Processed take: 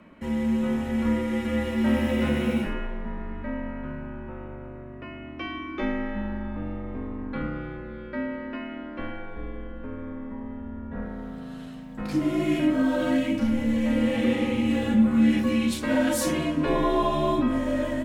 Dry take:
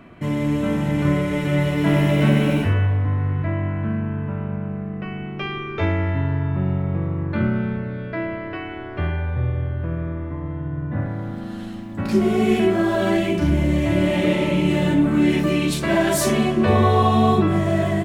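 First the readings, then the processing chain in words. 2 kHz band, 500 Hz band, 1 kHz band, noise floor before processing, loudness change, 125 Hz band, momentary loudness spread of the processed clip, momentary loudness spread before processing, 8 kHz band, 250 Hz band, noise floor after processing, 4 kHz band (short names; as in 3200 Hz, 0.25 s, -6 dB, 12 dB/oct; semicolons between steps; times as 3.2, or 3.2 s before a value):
-6.0 dB, -7.0 dB, -7.5 dB, -31 dBFS, -5.5 dB, -15.0 dB, 15 LU, 12 LU, n/a, -3.5 dB, -39 dBFS, -6.0 dB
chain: frequency shift -69 Hz; resonant low shelf 170 Hz -6.5 dB, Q 3; gain -6 dB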